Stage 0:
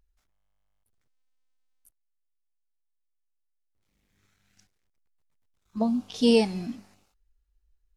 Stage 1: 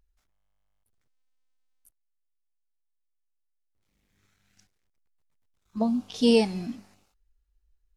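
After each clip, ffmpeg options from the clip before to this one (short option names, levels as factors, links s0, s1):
-af anull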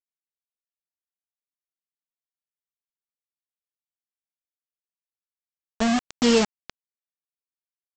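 -af "aeval=exprs='val(0)+0.5*0.0211*sgn(val(0))':c=same,aresample=16000,acrusher=bits=3:mix=0:aa=0.000001,aresample=44100"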